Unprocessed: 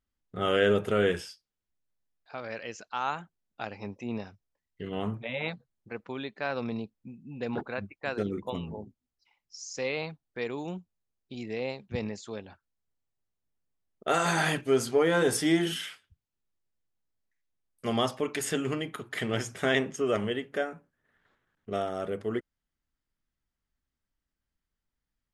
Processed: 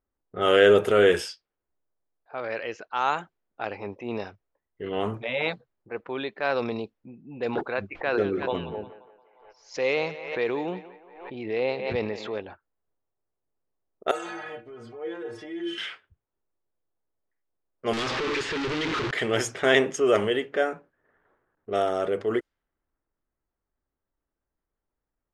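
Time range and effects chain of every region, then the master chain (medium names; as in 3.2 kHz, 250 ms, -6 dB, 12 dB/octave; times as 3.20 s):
7.92–12.38 s: low-pass 3.6 kHz + thinning echo 176 ms, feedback 61%, high-pass 460 Hz, level -14.5 dB + swell ahead of each attack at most 72 dB/s
14.11–15.78 s: compression 5:1, threshold -28 dBFS + inharmonic resonator 110 Hz, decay 0.29 s, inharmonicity 0.008
17.93–19.11 s: one-bit comparator + low-pass 4.7 kHz + peaking EQ 660 Hz -10.5 dB 0.81 oct
whole clip: level-controlled noise filter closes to 1.1 kHz, open at -26.5 dBFS; resonant low shelf 280 Hz -6.5 dB, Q 1.5; transient shaper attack -3 dB, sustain +2 dB; trim +6.5 dB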